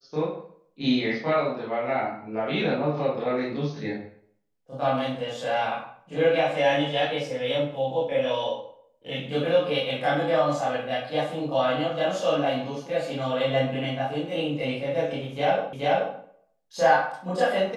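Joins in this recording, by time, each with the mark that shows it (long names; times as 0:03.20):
0:15.73: the same again, the last 0.43 s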